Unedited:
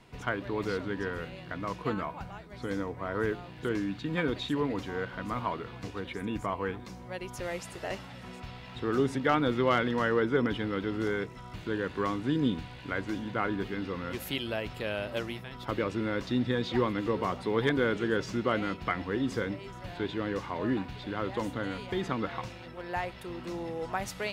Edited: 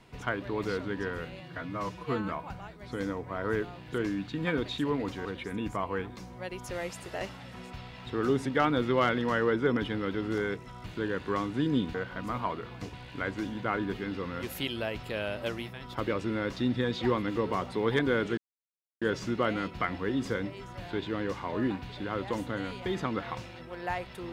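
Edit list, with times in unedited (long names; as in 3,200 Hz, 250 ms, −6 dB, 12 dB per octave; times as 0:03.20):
0:01.40–0:01.99: time-stretch 1.5×
0:04.96–0:05.95: move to 0:12.64
0:18.08: splice in silence 0.64 s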